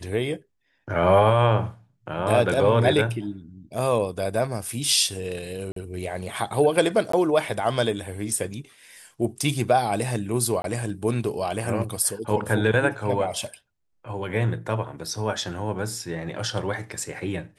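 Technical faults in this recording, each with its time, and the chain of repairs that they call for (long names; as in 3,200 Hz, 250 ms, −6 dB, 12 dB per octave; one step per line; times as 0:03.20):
0:05.72–0:05.76: drop-out 43 ms
0:07.12–0:07.13: drop-out 14 ms
0:10.62–0:10.64: drop-out 22 ms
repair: repair the gap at 0:05.72, 43 ms
repair the gap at 0:07.12, 14 ms
repair the gap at 0:10.62, 22 ms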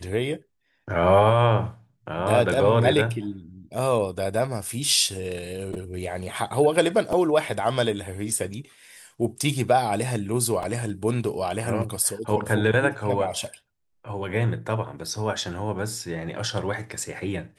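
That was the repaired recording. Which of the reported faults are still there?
none of them is left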